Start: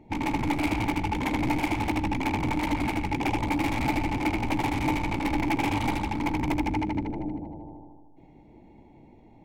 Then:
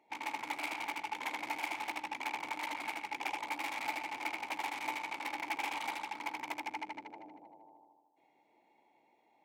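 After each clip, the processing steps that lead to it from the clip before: HPF 820 Hz 12 dB/oct; gain -6 dB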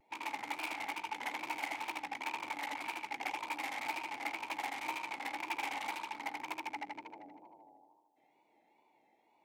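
wow and flutter 88 cents; gain -1 dB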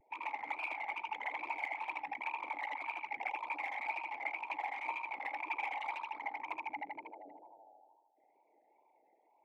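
formant sharpening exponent 2

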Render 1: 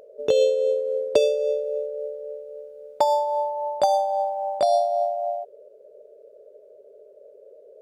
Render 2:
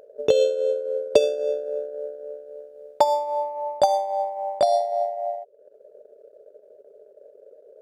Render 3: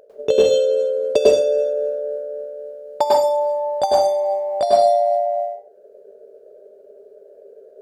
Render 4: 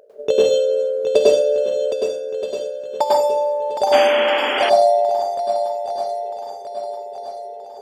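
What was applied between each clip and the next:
transient shaper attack +4 dB, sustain -8 dB; gain -1 dB
reverb RT60 0.40 s, pre-delay 96 ms, DRR -5 dB; gain -1 dB
low shelf 130 Hz -8 dB; swung echo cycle 1.276 s, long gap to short 1.5:1, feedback 43%, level -8 dB; painted sound noise, 3.92–4.7, 220–3400 Hz -22 dBFS

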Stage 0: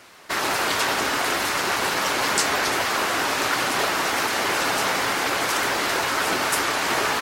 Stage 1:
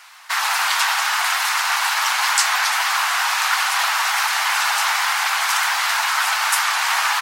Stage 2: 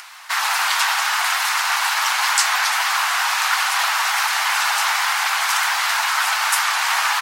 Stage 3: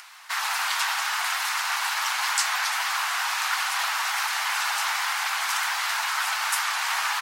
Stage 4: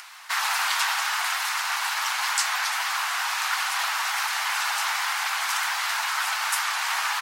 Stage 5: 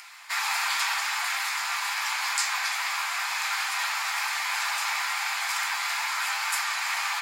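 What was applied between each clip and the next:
steep high-pass 790 Hz 48 dB/oct; gain +4.5 dB
upward compressor, threshold -34 dBFS
low shelf 410 Hz -5.5 dB; gain -6.5 dB
vocal rider within 4 dB 2 s
reverb RT60 0.50 s, pre-delay 3 ms, DRR 1.5 dB; gain -4.5 dB

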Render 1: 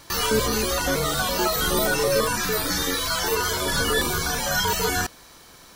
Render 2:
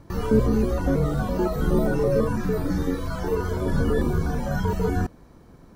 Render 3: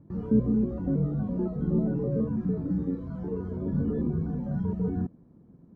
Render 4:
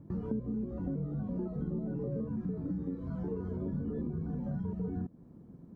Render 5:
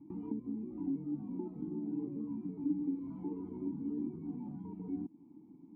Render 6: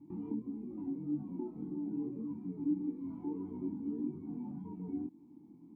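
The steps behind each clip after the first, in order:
EQ curve 220 Hz 0 dB, 2300 Hz -22 dB, 3300 Hz -28 dB; gain +7.5 dB
band-pass 190 Hz, Q 1.5
compressor 6:1, threshold -35 dBFS, peak gain reduction 16.5 dB; gain +2 dB
vowel filter u; gain +7.5 dB
chorus 1.7 Hz, delay 20 ms, depth 4.5 ms; gain +3 dB

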